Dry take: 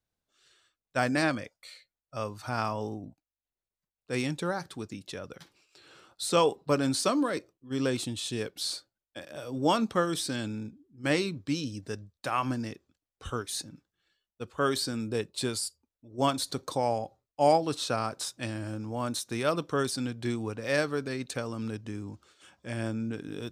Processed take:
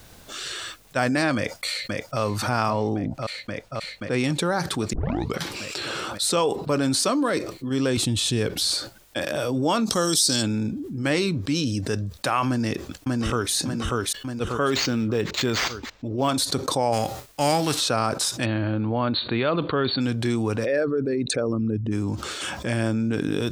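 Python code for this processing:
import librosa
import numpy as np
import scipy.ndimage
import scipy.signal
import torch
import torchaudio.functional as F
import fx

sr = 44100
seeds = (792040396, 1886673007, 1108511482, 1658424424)

y = fx.echo_throw(x, sr, start_s=1.36, length_s=0.84, ms=530, feedback_pct=70, wet_db=-8.5)
y = fx.lowpass(y, sr, hz=3500.0, slope=6, at=(2.7, 4.24))
y = fx.low_shelf(y, sr, hz=130.0, db=11.5, at=(7.97, 8.75))
y = fx.high_shelf_res(y, sr, hz=3400.0, db=13.5, q=1.5, at=(9.85, 10.41), fade=0.02)
y = fx.echo_throw(y, sr, start_s=12.47, length_s=1.06, ms=590, feedback_pct=30, wet_db=-2.5)
y = fx.resample_linear(y, sr, factor=4, at=(14.7, 16.29))
y = fx.envelope_flatten(y, sr, power=0.6, at=(16.92, 17.79), fade=0.02)
y = fx.brickwall_lowpass(y, sr, high_hz=4600.0, at=(18.44, 20.0), fade=0.02)
y = fx.envelope_sharpen(y, sr, power=2.0, at=(20.64, 21.91), fade=0.02)
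y = fx.edit(y, sr, fx.tape_start(start_s=4.93, length_s=0.43), tone=tone)
y = fx.env_flatten(y, sr, amount_pct=70)
y = y * 10.0 ** (-1.0 / 20.0)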